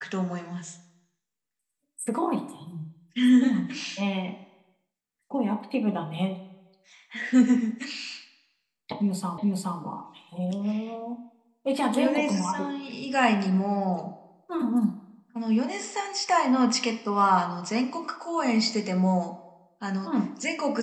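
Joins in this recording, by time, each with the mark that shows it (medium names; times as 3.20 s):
9.38 s: repeat of the last 0.42 s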